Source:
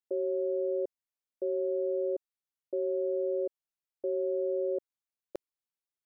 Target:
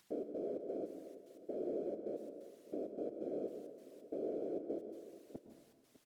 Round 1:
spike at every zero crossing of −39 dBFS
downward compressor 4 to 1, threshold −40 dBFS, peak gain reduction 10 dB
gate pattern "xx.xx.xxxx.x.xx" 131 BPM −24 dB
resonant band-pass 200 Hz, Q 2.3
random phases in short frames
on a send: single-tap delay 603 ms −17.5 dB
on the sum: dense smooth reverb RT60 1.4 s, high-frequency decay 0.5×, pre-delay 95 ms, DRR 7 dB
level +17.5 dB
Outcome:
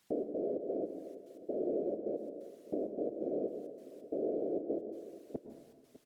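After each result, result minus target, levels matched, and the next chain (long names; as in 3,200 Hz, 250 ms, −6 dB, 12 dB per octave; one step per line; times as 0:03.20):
spike at every zero crossing: distortion −12 dB; downward compressor: peak gain reduction −5.5 dB
spike at every zero crossing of −27 dBFS
downward compressor 4 to 1, threshold −40 dBFS, peak gain reduction 10 dB
gate pattern "xx.xx.xxxx.x.xx" 131 BPM −24 dB
resonant band-pass 200 Hz, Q 2.3
random phases in short frames
on a send: single-tap delay 603 ms −17.5 dB
on the sum: dense smooth reverb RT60 1.4 s, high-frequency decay 0.5×, pre-delay 95 ms, DRR 7 dB
level +17.5 dB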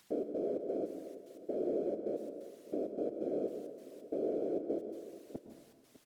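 downward compressor: peak gain reduction −5.5 dB
spike at every zero crossing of −27 dBFS
downward compressor 4 to 1, threshold −47 dBFS, peak gain reduction 15.5 dB
gate pattern "xx.xx.xxxx.x.xx" 131 BPM −24 dB
resonant band-pass 200 Hz, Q 2.3
random phases in short frames
on a send: single-tap delay 603 ms −17.5 dB
on the sum: dense smooth reverb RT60 1.4 s, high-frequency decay 0.5×, pre-delay 95 ms, DRR 7 dB
level +17.5 dB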